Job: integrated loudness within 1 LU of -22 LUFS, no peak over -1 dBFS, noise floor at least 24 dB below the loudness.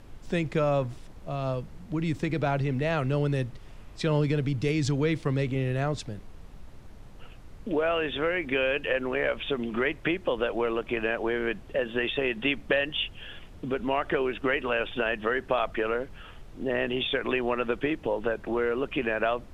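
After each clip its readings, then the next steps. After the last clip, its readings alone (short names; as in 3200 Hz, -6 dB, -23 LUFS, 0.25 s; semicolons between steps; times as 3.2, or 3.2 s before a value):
noise floor -47 dBFS; noise floor target -53 dBFS; loudness -28.5 LUFS; peak -10.5 dBFS; loudness target -22.0 LUFS
-> noise print and reduce 6 dB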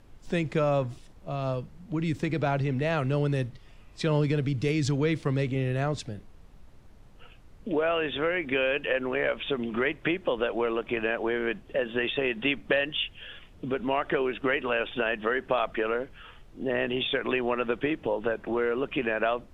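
noise floor -52 dBFS; noise floor target -53 dBFS
-> noise print and reduce 6 dB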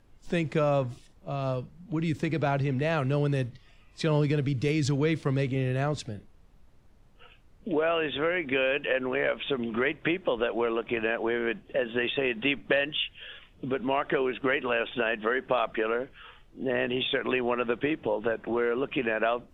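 noise floor -57 dBFS; loudness -28.5 LUFS; peak -10.5 dBFS; loudness target -22.0 LUFS
-> gain +6.5 dB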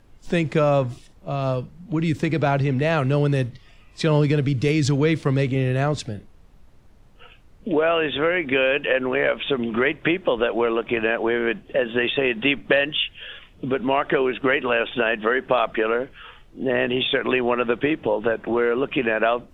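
loudness -22.0 LUFS; peak -4.0 dBFS; noise floor -50 dBFS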